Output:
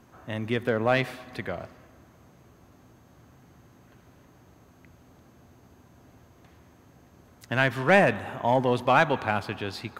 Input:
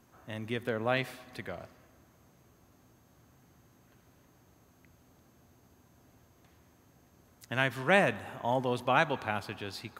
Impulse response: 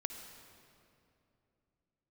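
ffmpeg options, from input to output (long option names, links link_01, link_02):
-filter_complex "[0:a]highshelf=frequency=5000:gain=-8.5,asplit=2[link_01][link_02];[link_02]asoftclip=type=hard:threshold=-24dB,volume=-4dB[link_03];[link_01][link_03]amix=inputs=2:normalize=0,volume=3.5dB"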